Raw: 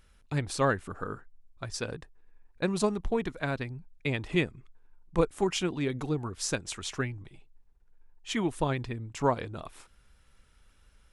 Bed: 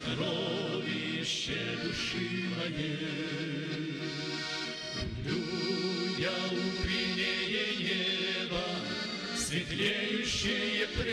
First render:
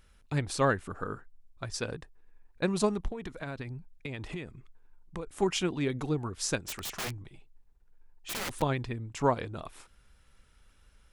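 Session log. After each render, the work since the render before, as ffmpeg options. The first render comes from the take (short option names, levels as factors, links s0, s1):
-filter_complex "[0:a]asettb=1/sr,asplit=3[s0][s1][s2];[s0]atrim=end=3.084[s3];[s1]atrim=start=3.08:end=5.27,asetpts=PTS-STARTPTS,afade=t=in:d=0.004:c=qsin,afade=t=out:st=2.186:d=0.004:c=qsin,acompressor=threshold=0.0224:ratio=16:attack=3.2:release=140:knee=1:detection=peak[s4];[s2]atrim=start=5.266[s5];[s3][s4]acrossfade=d=0.004:c1=hsin:c2=qsin[s6];[s6][s5]acrossfade=d=0.004:c1=qsin:c2=hsin,asettb=1/sr,asplit=3[s7][s8][s9];[s7]atrim=end=6.624[s10];[s8]atrim=start=6.62:end=8.62,asetpts=PTS-STARTPTS,afade=t=in:d=0.004:c=qsin,afade=t=out:st=1.996:d=0.004:c=qsin,aeval=exprs='(mod(31.6*val(0)+1,2)-1)/31.6':c=same[s11];[s9]atrim=start=8.616[s12];[s10][s11]acrossfade=d=0.004:c1=hsin:c2=qsin[s13];[s13][s12]acrossfade=d=0.004:c1=qsin:c2=hsin"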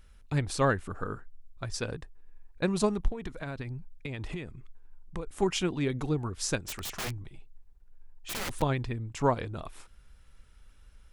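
-af "lowshelf=f=82:g=8"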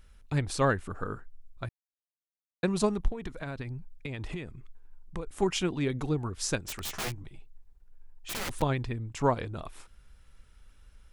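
-filter_complex "[0:a]asettb=1/sr,asplit=3[s0][s1][s2];[s0]atrim=end=6.834[s3];[s1]atrim=start=6.83:end=7.25,asetpts=PTS-STARTPTS,afade=t=in:d=0.004:c=qsin,afade=t=out:st=0.416:d=0.004:c=qsin,asplit=2[s4][s5];[s5]adelay=14,volume=0.562[s6];[s4][s6]amix=inputs=2:normalize=0,atrim=end_sample=18522[s7];[s2]atrim=start=7.246[s8];[s3][s7]acrossfade=d=0.004:c1=hsin:c2=qsin[s9];[s9][s8]acrossfade=d=0.004:c1=qsin:c2=hsin,asplit=3[s10][s11][s12];[s10]atrim=end=1.69,asetpts=PTS-STARTPTS,afade=t=out:st=1.686:d=0.004:c=hsin[s13];[s11]atrim=start=1.69:end=2.63,asetpts=PTS-STARTPTS,volume=0[s14];[s12]atrim=start=2.63,asetpts=PTS-STARTPTS,afade=t=in:d=0.004:c=hsin[s15];[s13][s14][s15]concat=n=3:v=0:a=1"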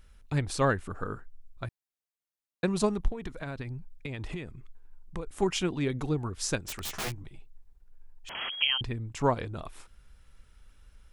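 -filter_complex "[0:a]asettb=1/sr,asplit=3[s0][s1][s2];[s0]atrim=end=8.294[s3];[s1]atrim=start=8.29:end=8.81,asetpts=PTS-STARTPTS,afade=t=in:d=0.004:c=qsin,afade=t=out:st=0.516:d=0.004:c=qsin,lowpass=f=2800:t=q:w=0.5098,lowpass=f=2800:t=q:w=0.6013,lowpass=f=2800:t=q:w=0.9,lowpass=f=2800:t=q:w=2.563,afreqshift=-3300[s4];[s2]atrim=start=8.806[s5];[s3][s4]acrossfade=d=0.004:c1=hsin:c2=qsin[s6];[s6][s5]acrossfade=d=0.004:c1=qsin:c2=hsin"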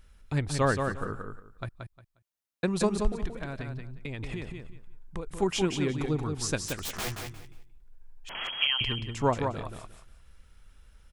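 -af "aecho=1:1:178|356|534:0.531|0.111|0.0234"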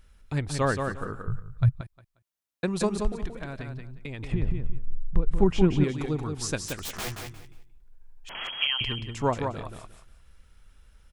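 -filter_complex "[0:a]asettb=1/sr,asplit=3[s0][s1][s2];[s0]atrim=end=1.274[s3];[s1]atrim=start=1.27:end=1.81,asetpts=PTS-STARTPTS,afade=t=in:d=0.004:c=qsin,afade=t=out:st=0.536:d=0.004:c=qsin,lowshelf=f=190:t=q:w=3:g=12[s4];[s2]atrim=start=1.806[s5];[s3][s4]acrossfade=d=0.004:c1=hsin:c2=qsin[s6];[s6][s5]acrossfade=d=0.004:c1=qsin:c2=hsin,asettb=1/sr,asplit=3[s7][s8][s9];[s7]atrim=end=4.324[s10];[s8]atrim=start=4.32:end=5.84,asetpts=PTS-STARTPTS,afade=t=in:d=0.004:c=qsin,afade=t=out:st=1.516:d=0.004:c=qsin,aemphasis=mode=reproduction:type=riaa[s11];[s9]atrim=start=5.836[s12];[s10][s11]acrossfade=d=0.004:c1=hsin:c2=qsin[s13];[s13][s12]acrossfade=d=0.004:c1=qsin:c2=hsin"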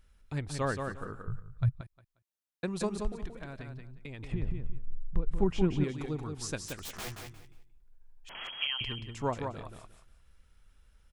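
-af "volume=0.473"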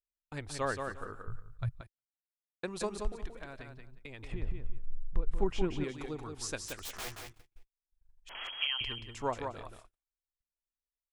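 -af "equalizer=f=160:t=o:w=1.5:g=-10,agate=range=0.00794:threshold=0.00355:ratio=16:detection=peak"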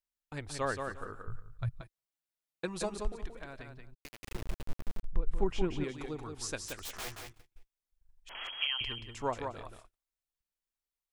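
-filter_complex "[0:a]asettb=1/sr,asplit=3[s0][s1][s2];[s0]atrim=end=1.734[s3];[s1]atrim=start=1.73:end=2.94,asetpts=PTS-STARTPTS,afade=t=in:d=0.004:c=qsin,afade=t=out:st=1.206:d=0.004:c=qsin,aecho=1:1:6.2:0.63,atrim=end_sample=53361[s4];[s2]atrim=start=2.936[s5];[s3][s4]acrossfade=d=0.004:c1=hsin:c2=qsin[s6];[s6][s5]acrossfade=d=0.004:c1=qsin:c2=hsin,asplit=3[s7][s8][s9];[s7]afade=t=out:st=3.93:d=0.02[s10];[s8]acrusher=bits=4:dc=4:mix=0:aa=0.000001,afade=t=in:st=3.93:d=0.02,afade=t=out:st=5.03:d=0.02[s11];[s9]afade=t=in:st=5.03:d=0.02[s12];[s10][s11][s12]amix=inputs=3:normalize=0"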